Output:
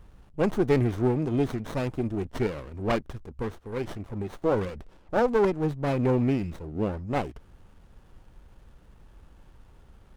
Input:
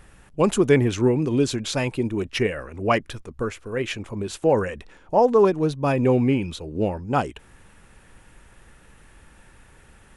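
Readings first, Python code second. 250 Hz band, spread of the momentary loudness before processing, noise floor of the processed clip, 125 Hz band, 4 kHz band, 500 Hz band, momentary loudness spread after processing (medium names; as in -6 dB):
-4.5 dB, 12 LU, -55 dBFS, -3.5 dB, -12.0 dB, -6.0 dB, 12 LU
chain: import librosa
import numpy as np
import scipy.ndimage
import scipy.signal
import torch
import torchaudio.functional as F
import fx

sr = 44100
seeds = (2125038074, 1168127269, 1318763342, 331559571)

y = fx.low_shelf(x, sr, hz=110.0, db=8.0)
y = fx.running_max(y, sr, window=17)
y = y * librosa.db_to_amplitude(-5.5)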